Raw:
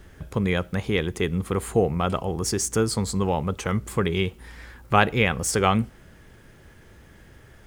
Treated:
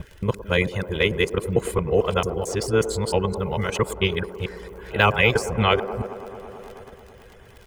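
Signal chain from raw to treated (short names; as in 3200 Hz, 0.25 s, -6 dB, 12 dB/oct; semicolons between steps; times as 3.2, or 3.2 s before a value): local time reversal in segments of 0.223 s; crackle 31/s -36 dBFS; comb 2 ms, depth 39%; on a send at -22 dB: reverb RT60 1.2 s, pre-delay 26 ms; on the sum: reverb removal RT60 0.56 s; de-esser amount 55%; bell 2800 Hz +5.5 dB 0.89 oct; band-limited delay 0.109 s, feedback 83%, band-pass 500 Hz, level -10.5 dB; in parallel at +1 dB: level quantiser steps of 11 dB; on the sum: gain -3.5 dB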